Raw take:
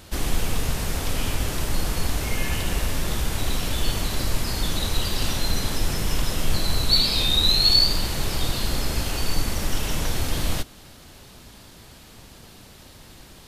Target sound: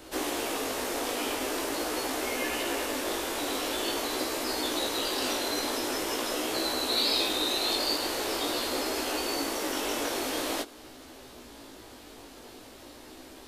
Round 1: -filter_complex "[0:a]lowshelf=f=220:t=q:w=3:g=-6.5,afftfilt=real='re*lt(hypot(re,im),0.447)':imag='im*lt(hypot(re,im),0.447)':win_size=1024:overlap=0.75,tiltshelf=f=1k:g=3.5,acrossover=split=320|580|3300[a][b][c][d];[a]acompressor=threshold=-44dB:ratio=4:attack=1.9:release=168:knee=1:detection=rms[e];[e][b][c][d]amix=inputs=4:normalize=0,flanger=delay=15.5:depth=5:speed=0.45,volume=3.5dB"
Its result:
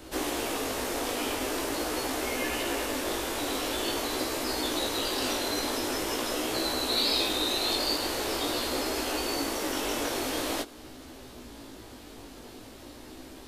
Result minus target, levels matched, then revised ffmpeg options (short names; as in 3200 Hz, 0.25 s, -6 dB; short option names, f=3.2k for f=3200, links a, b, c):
compressor: peak gain reduction -7 dB
-filter_complex "[0:a]lowshelf=f=220:t=q:w=3:g=-6.5,afftfilt=real='re*lt(hypot(re,im),0.447)':imag='im*lt(hypot(re,im),0.447)':win_size=1024:overlap=0.75,tiltshelf=f=1k:g=3.5,acrossover=split=320|580|3300[a][b][c][d];[a]acompressor=threshold=-53.5dB:ratio=4:attack=1.9:release=168:knee=1:detection=rms[e];[e][b][c][d]amix=inputs=4:normalize=0,flanger=delay=15.5:depth=5:speed=0.45,volume=3.5dB"